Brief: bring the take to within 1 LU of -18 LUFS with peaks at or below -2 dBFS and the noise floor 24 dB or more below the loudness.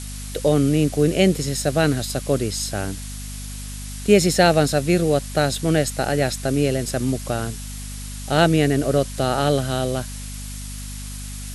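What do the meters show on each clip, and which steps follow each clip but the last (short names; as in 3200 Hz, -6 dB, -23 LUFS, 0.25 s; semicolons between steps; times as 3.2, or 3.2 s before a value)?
hum 50 Hz; harmonics up to 250 Hz; hum level -31 dBFS; noise floor -32 dBFS; noise floor target -45 dBFS; loudness -20.5 LUFS; peak -1.5 dBFS; loudness target -18.0 LUFS
-> notches 50/100/150/200/250 Hz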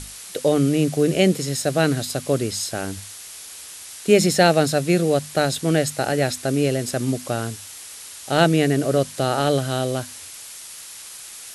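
hum none; noise floor -39 dBFS; noise floor target -45 dBFS
-> noise print and reduce 6 dB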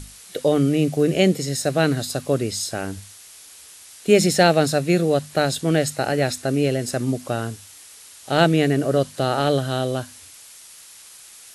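noise floor -45 dBFS; loudness -21.0 LUFS; peak -2.5 dBFS; loudness target -18.0 LUFS
-> gain +3 dB; limiter -2 dBFS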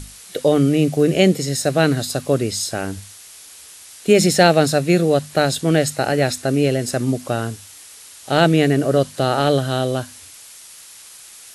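loudness -18.0 LUFS; peak -2.0 dBFS; noise floor -42 dBFS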